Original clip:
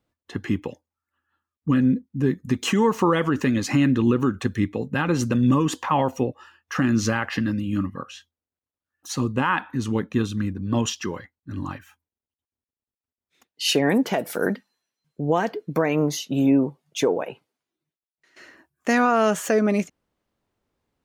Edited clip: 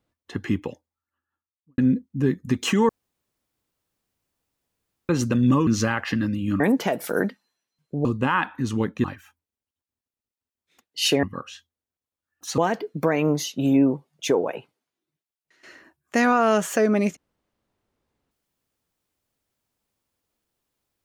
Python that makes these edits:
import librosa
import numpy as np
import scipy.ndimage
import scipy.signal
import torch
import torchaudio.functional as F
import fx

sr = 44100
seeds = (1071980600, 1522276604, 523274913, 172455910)

y = fx.studio_fade_out(x, sr, start_s=0.69, length_s=1.09)
y = fx.edit(y, sr, fx.room_tone_fill(start_s=2.89, length_s=2.2),
    fx.cut(start_s=5.67, length_s=1.25),
    fx.swap(start_s=7.85, length_s=1.35, other_s=13.86, other_length_s=1.45),
    fx.cut(start_s=10.19, length_s=1.48), tone=tone)